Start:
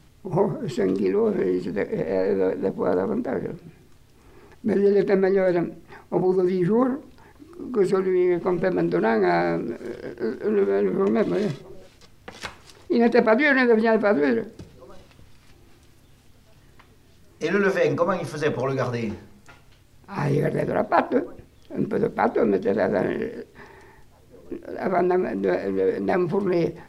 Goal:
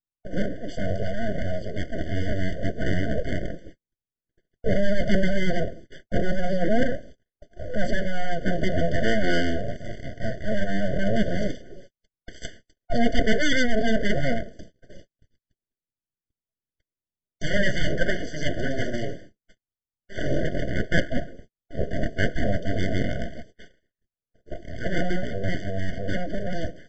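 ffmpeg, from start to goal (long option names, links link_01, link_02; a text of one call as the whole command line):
ffmpeg -i in.wav -af "agate=range=-47dB:threshold=-43dB:ratio=16:detection=peak,dynaudnorm=framelen=660:gausssize=7:maxgain=4.5dB,aresample=16000,aeval=exprs='abs(val(0))':channel_layout=same,aresample=44100,afftfilt=real='re*eq(mod(floor(b*sr/1024/720),2),0)':imag='im*eq(mod(floor(b*sr/1024/720),2),0)':win_size=1024:overlap=0.75" out.wav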